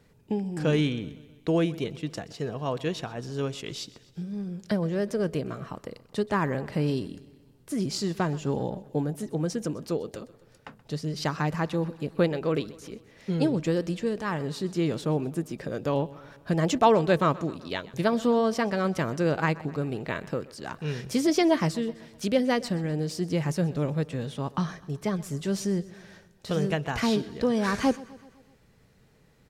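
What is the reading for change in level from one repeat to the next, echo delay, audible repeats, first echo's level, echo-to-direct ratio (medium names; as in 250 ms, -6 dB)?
-5.0 dB, 127 ms, 4, -20.0 dB, -18.5 dB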